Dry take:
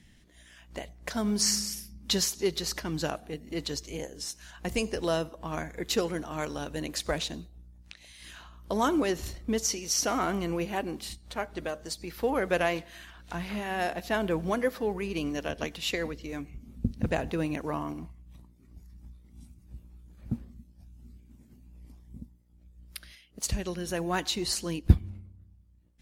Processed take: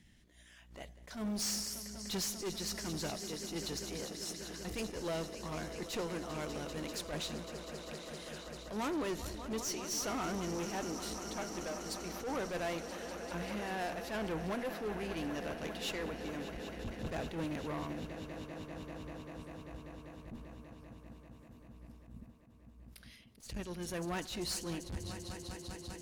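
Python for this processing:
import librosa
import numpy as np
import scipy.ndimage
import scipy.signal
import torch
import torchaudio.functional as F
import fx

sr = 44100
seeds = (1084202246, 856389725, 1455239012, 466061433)

y = fx.echo_swell(x, sr, ms=196, loudest=5, wet_db=-16.5)
y = fx.tube_stage(y, sr, drive_db=29.0, bias=0.45)
y = fx.attack_slew(y, sr, db_per_s=120.0)
y = y * 10.0 ** (-3.5 / 20.0)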